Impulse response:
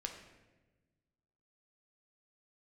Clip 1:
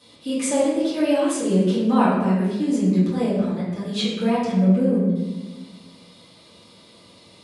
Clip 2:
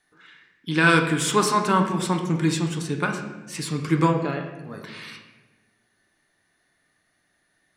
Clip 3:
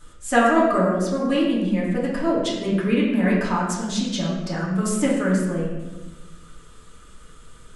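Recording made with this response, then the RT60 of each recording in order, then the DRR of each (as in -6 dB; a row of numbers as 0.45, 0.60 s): 2; 1.2, 1.2, 1.2 s; -13.0, 2.5, -6.5 dB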